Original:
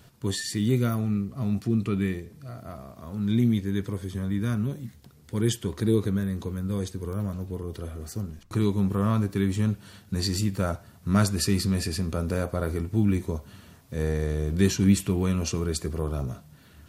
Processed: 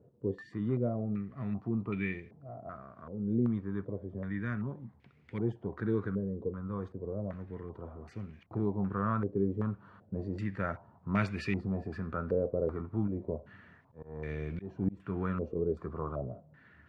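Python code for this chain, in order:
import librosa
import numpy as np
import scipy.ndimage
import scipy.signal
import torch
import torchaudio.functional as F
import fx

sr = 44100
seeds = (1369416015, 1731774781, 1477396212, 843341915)

y = scipy.signal.sosfilt(scipy.signal.butter(2, 84.0, 'highpass', fs=sr, output='sos'), x)
y = fx.auto_swell(y, sr, attack_ms=287.0, at=(13.06, 15.54), fade=0.02)
y = fx.filter_held_lowpass(y, sr, hz=2.6, low_hz=480.0, high_hz=2300.0)
y = F.gain(torch.from_numpy(y), -8.5).numpy()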